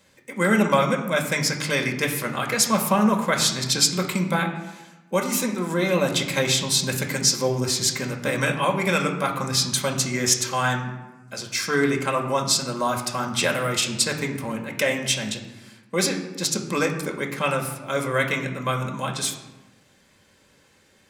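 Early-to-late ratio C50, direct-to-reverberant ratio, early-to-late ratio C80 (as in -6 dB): 8.0 dB, 1.0 dB, 10.0 dB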